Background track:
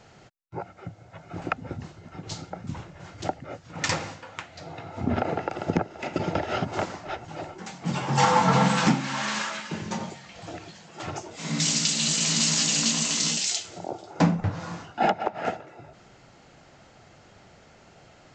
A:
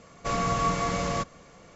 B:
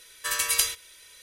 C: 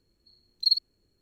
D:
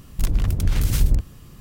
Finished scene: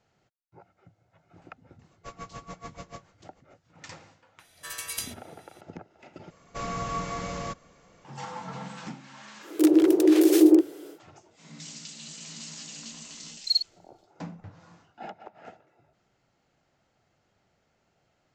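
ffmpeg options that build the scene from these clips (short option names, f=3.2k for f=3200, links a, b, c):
-filter_complex "[1:a]asplit=2[a][b];[0:a]volume=-18.5dB[c];[a]aeval=exprs='val(0)*pow(10,-25*(0.5-0.5*cos(2*PI*6.9*n/s))/20)':c=same[d];[4:a]afreqshift=280[e];[c]asplit=2[f][g];[f]atrim=end=6.304[h];[b]atrim=end=1.75,asetpts=PTS-STARTPTS,volume=-6dB[i];[g]atrim=start=8.046[j];[d]atrim=end=1.75,asetpts=PTS-STARTPTS,volume=-10.5dB,afade=t=in:d=0.004:c=hsin,afade=t=out:st=1.746:d=0.004:c=hsin,adelay=1790[k];[2:a]atrim=end=1.22,asetpts=PTS-STARTPTS,volume=-10.5dB,afade=t=in:d=0.004:c=hsin,afade=t=out:st=1.216:d=0.004:c=hsin,adelay=4390[l];[e]atrim=end=1.6,asetpts=PTS-STARTPTS,afade=t=in:d=0.1,afade=t=out:st=1.5:d=0.1,adelay=9400[m];[3:a]atrim=end=1.21,asetpts=PTS-STARTPTS,volume=-1.5dB,afade=t=in:d=0.004:c=hsin,afade=t=out:st=1.206:d=0.004:c=hsin,adelay=566244S[n];[h][i]acrossfade=d=0.004:c1=hsin:c2=hsin[o];[o][j]acrossfade=d=0.004:c1=hsin:c2=hsin[p];[p][k][l][m][n]amix=inputs=5:normalize=0"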